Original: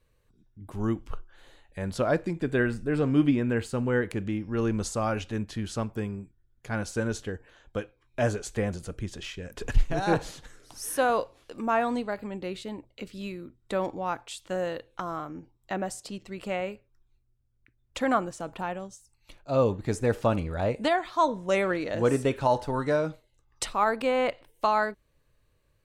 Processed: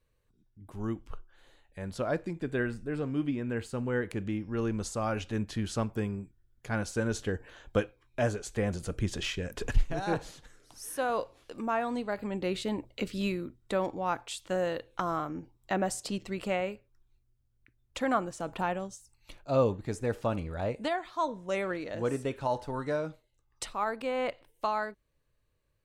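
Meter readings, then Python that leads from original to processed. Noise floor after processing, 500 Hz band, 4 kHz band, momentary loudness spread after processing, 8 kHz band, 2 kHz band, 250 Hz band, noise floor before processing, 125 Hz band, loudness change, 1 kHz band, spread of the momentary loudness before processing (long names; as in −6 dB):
−73 dBFS, −4.0 dB, −1.5 dB, 8 LU, −2.5 dB, −4.0 dB, −4.0 dB, −69 dBFS, −3.5 dB, −4.0 dB, −4.5 dB, 14 LU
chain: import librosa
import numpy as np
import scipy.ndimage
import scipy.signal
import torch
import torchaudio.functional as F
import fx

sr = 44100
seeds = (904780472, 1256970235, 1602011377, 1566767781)

y = fx.rider(x, sr, range_db=10, speed_s=0.5)
y = F.gain(torch.from_numpy(y), -4.0).numpy()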